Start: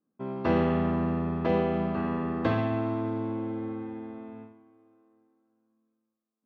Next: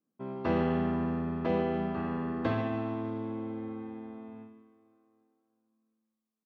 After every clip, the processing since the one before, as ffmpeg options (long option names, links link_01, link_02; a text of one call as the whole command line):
ffmpeg -i in.wav -af "aecho=1:1:150|300|450|600:0.237|0.0925|0.0361|0.0141,volume=-4dB" out.wav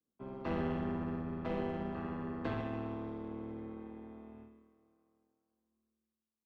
ffmpeg -i in.wav -filter_complex "[0:a]tremolo=f=150:d=0.667,acrossover=split=110|410|850[link_01][link_02][link_03][link_04];[link_03]aeval=exprs='clip(val(0),-1,0.00531)':channel_layout=same[link_05];[link_01][link_02][link_05][link_04]amix=inputs=4:normalize=0,volume=-3.5dB" out.wav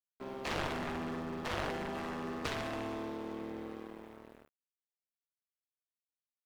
ffmpeg -i in.wav -af "bass=frequency=250:gain=-10,treble=frequency=4000:gain=13,aeval=exprs='sgn(val(0))*max(abs(val(0))-0.00178,0)':channel_layout=same,aeval=exprs='0.0596*(cos(1*acos(clip(val(0)/0.0596,-1,1)))-cos(1*PI/2))+0.0299*(cos(7*acos(clip(val(0)/0.0596,-1,1)))-cos(7*PI/2))':channel_layout=same,volume=1dB" out.wav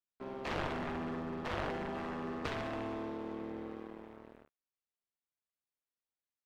ffmpeg -i in.wav -af "lowpass=frequency=2600:poles=1" out.wav